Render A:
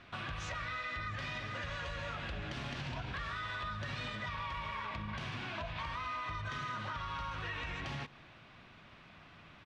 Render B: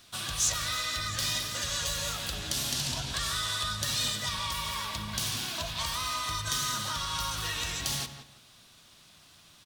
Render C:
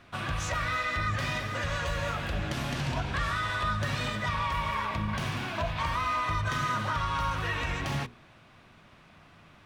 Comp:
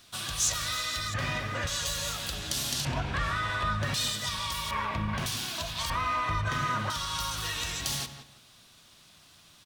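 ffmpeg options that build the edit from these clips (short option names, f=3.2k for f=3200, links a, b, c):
-filter_complex "[2:a]asplit=4[a][b][c][d];[1:a]asplit=5[e][f][g][h][i];[e]atrim=end=1.142[j];[a]atrim=start=1.138:end=1.672[k];[f]atrim=start=1.668:end=2.852[l];[b]atrim=start=2.848:end=3.942[m];[g]atrim=start=3.938:end=4.712[n];[c]atrim=start=4.708:end=5.262[o];[h]atrim=start=5.258:end=5.902[p];[d]atrim=start=5.898:end=6.902[q];[i]atrim=start=6.898[r];[j][k]acrossfade=d=0.004:c1=hsin:c2=hsin[s];[s][l]acrossfade=d=0.004:c1=hsin:c2=hsin[t];[t][m]acrossfade=d=0.004:c1=hsin:c2=hsin[u];[u][n]acrossfade=d=0.004:c1=hsin:c2=hsin[v];[v][o]acrossfade=d=0.004:c1=hsin:c2=hsin[w];[w][p]acrossfade=d=0.004:c1=hsin:c2=hsin[x];[x][q]acrossfade=d=0.004:c1=hsin:c2=hsin[y];[y][r]acrossfade=d=0.004:c1=hsin:c2=hsin"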